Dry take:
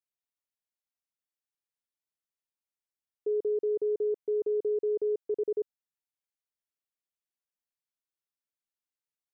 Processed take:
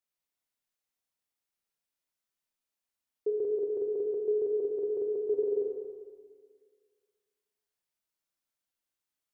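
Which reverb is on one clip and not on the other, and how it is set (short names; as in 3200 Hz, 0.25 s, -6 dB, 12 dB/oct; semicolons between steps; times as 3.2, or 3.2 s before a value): Schroeder reverb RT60 1.8 s, combs from 25 ms, DRR -1 dB; gain +1 dB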